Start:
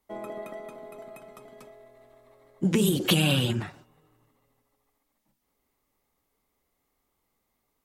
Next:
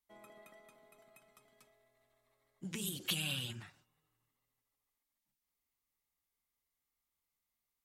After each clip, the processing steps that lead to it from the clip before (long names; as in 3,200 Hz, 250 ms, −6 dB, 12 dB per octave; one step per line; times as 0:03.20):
guitar amp tone stack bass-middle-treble 5-5-5
level −3 dB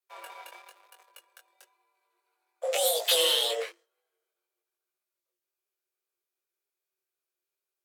leveller curve on the samples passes 3
frequency shifter +340 Hz
chorus effect 1 Hz, delay 18.5 ms, depth 4.3 ms
level +7.5 dB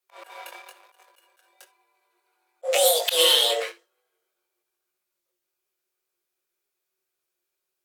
convolution reverb, pre-delay 6 ms, DRR 9 dB
volume swells 118 ms
level +6 dB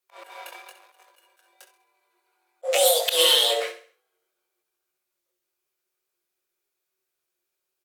repeating echo 66 ms, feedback 40%, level −13 dB